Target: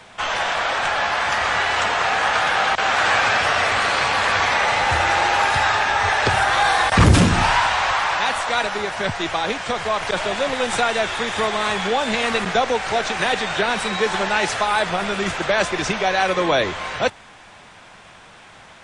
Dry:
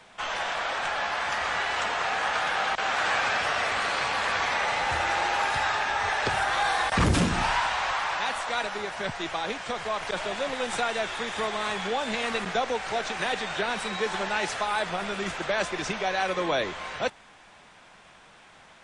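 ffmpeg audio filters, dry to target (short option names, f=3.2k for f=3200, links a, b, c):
-af "equalizer=f=97:t=o:w=0.6:g=6.5,volume=8dB"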